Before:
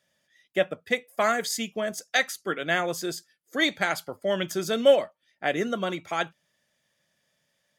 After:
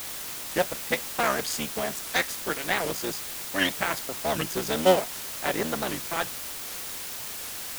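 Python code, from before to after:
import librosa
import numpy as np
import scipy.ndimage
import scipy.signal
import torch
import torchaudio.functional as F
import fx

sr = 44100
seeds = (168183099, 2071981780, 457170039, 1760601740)

y = fx.cycle_switch(x, sr, every=3, mode='muted')
y = fx.quant_dither(y, sr, seeds[0], bits=6, dither='triangular')
y = fx.record_warp(y, sr, rpm=78.0, depth_cents=250.0)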